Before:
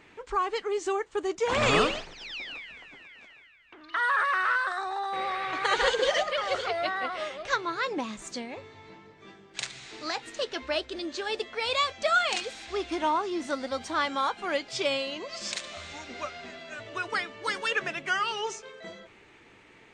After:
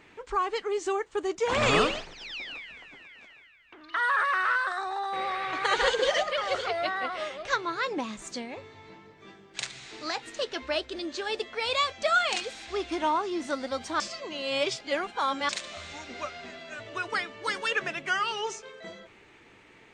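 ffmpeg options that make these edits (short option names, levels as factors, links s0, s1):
-filter_complex "[0:a]asplit=3[s0][s1][s2];[s0]atrim=end=14.002[s3];[s1]atrim=start=13.998:end=15.492,asetpts=PTS-STARTPTS,areverse[s4];[s2]atrim=start=15.488[s5];[s3][s4]acrossfade=d=0.004:c1=hsin:c2=hsin[s6];[s6][s5]acrossfade=d=0.004:c1=hsin:c2=hsin"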